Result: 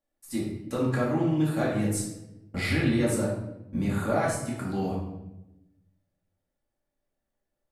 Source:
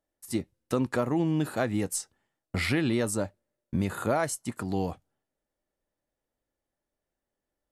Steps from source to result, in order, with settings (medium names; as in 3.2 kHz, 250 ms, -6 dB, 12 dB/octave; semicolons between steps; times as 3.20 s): simulated room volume 310 m³, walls mixed, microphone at 2.3 m; 3.92–4.47 s: loudspeaker Doppler distortion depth 0.1 ms; trim -6.5 dB